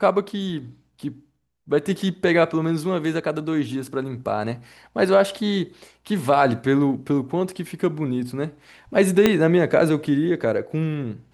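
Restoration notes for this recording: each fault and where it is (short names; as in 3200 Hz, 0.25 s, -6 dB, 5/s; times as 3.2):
9.26 pop -3 dBFS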